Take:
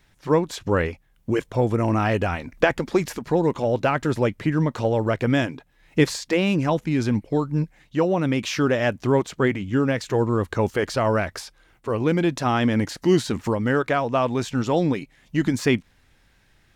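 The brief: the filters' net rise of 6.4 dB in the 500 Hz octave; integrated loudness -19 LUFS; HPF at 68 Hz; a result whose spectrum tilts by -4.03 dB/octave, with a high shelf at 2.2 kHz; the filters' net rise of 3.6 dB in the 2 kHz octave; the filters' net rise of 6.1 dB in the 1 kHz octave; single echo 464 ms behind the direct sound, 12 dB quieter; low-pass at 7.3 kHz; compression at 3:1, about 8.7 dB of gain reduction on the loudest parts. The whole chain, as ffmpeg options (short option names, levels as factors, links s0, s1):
-af "highpass=68,lowpass=7300,equalizer=f=500:t=o:g=6.5,equalizer=f=1000:t=o:g=5.5,equalizer=f=2000:t=o:g=4.5,highshelf=f=2200:g=-4.5,acompressor=threshold=0.112:ratio=3,aecho=1:1:464:0.251,volume=1.68"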